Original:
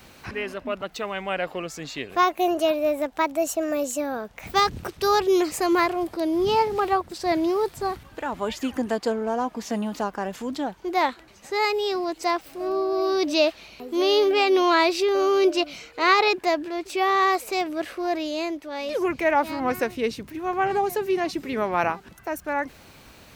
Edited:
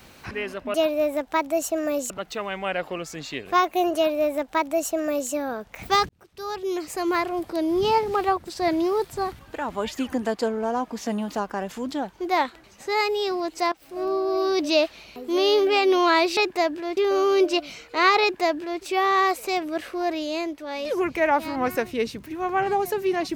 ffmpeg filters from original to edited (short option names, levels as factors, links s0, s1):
-filter_complex "[0:a]asplit=7[s0][s1][s2][s3][s4][s5][s6];[s0]atrim=end=0.742[s7];[s1]atrim=start=2.588:end=3.952[s8];[s2]atrim=start=0.738:end=4.73,asetpts=PTS-STARTPTS,afade=t=out:st=3.988:d=0.004:c=hsin[s9];[s3]atrim=start=4.73:end=12.36,asetpts=PTS-STARTPTS,afade=t=in:d=1.49,afade=t=out:st=7.626:d=0.004:c=hsin:silence=0.133352[s10];[s4]atrim=start=12.36:end=15.012,asetpts=PTS-STARTPTS,afade=t=in:d=0.29:silence=0.133352[s11];[s5]atrim=start=16.248:end=16.852[s12];[s6]atrim=start=15.008[s13];[s7][s8]acrossfade=d=0.004:c1=hsin:c2=hsin[s14];[s9][s10][s11]concat=n=3:v=0:a=1[s15];[s14][s15]acrossfade=d=0.004:c1=hsin:c2=hsin[s16];[s16][s12]acrossfade=d=0.004:c1=hsin:c2=hsin[s17];[s17][s13]acrossfade=d=0.004:c1=hsin:c2=hsin"